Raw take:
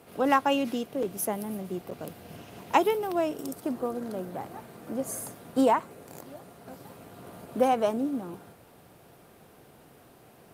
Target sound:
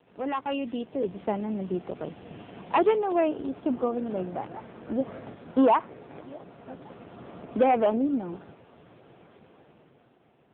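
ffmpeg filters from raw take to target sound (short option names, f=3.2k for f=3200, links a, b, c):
-af "asoftclip=type=hard:threshold=-19.5dB,dynaudnorm=f=110:g=17:m=9.5dB,volume=-5dB" -ar 8000 -c:a libopencore_amrnb -b:a 5900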